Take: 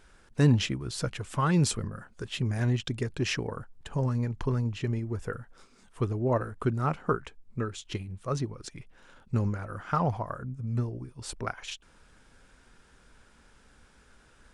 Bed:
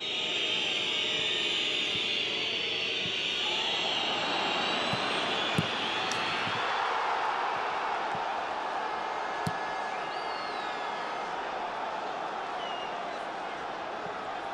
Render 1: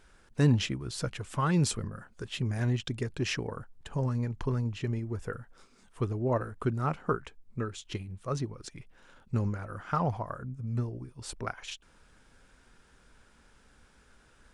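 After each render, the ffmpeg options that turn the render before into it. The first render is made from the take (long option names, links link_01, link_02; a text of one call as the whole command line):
ffmpeg -i in.wav -af "volume=-2dB" out.wav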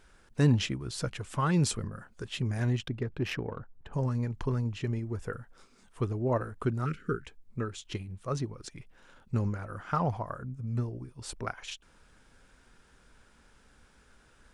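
ffmpeg -i in.wav -filter_complex "[0:a]asplit=3[link_01][link_02][link_03];[link_01]afade=type=out:start_time=2.84:duration=0.02[link_04];[link_02]adynamicsmooth=sensitivity=2.5:basefreq=2000,afade=type=in:start_time=2.84:duration=0.02,afade=type=out:start_time=3.92:duration=0.02[link_05];[link_03]afade=type=in:start_time=3.92:duration=0.02[link_06];[link_04][link_05][link_06]amix=inputs=3:normalize=0,asplit=3[link_07][link_08][link_09];[link_07]afade=type=out:start_time=6.84:duration=0.02[link_10];[link_08]asuperstop=centerf=780:order=8:qfactor=0.86,afade=type=in:start_time=6.84:duration=0.02,afade=type=out:start_time=7.26:duration=0.02[link_11];[link_09]afade=type=in:start_time=7.26:duration=0.02[link_12];[link_10][link_11][link_12]amix=inputs=3:normalize=0" out.wav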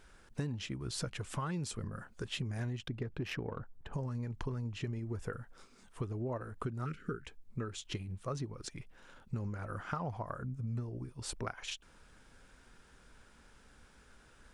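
ffmpeg -i in.wav -af "acompressor=threshold=-34dB:ratio=12" out.wav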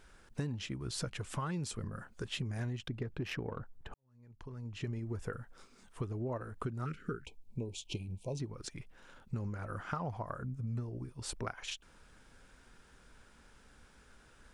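ffmpeg -i in.wav -filter_complex "[0:a]asettb=1/sr,asplit=3[link_01][link_02][link_03];[link_01]atrim=end=7.254[link_04];[link_02]atrim=start=7.25:end=8.4,asetpts=PTS-STARTPTS,afade=type=in:duration=0.004:curve=qsin,afade=type=out:start_time=1.146:duration=0.004:curve=qsin,asuperstop=centerf=1500:order=20:qfactor=1.2[link_05];[link_03]atrim=start=8.396[link_06];[link_04][link_05]acrossfade=duration=0.004:curve1=hsin:curve2=qsin[link_07];[link_07][link_06]acrossfade=duration=0.004:curve1=qsin:curve2=hsin,asplit=2[link_08][link_09];[link_08]atrim=end=3.94,asetpts=PTS-STARTPTS,afade=type=out:start_time=3.936:duration=0.004:curve=hsin[link_10];[link_09]atrim=start=3.94,asetpts=PTS-STARTPTS,afade=type=in:duration=0.93:curve=qua[link_11];[link_10][link_11]concat=n=2:v=0:a=1" out.wav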